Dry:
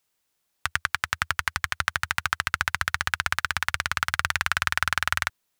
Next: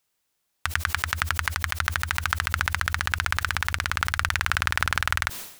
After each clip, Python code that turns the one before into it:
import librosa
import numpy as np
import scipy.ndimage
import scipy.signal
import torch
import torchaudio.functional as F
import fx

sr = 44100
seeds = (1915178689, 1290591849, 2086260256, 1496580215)

y = fx.sustainer(x, sr, db_per_s=88.0)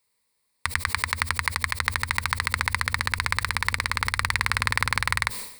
y = fx.ripple_eq(x, sr, per_octave=0.94, db=11)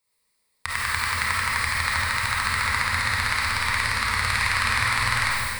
y = fx.rev_freeverb(x, sr, rt60_s=1.7, hf_ratio=0.95, predelay_ms=10, drr_db=-7.0)
y = y * 10.0 ** (-4.5 / 20.0)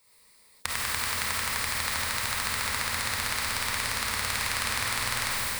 y = fx.spectral_comp(x, sr, ratio=2.0)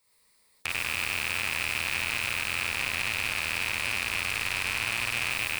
y = fx.rattle_buzz(x, sr, strikes_db=-53.0, level_db=-9.0)
y = y * 10.0 ** (-6.5 / 20.0)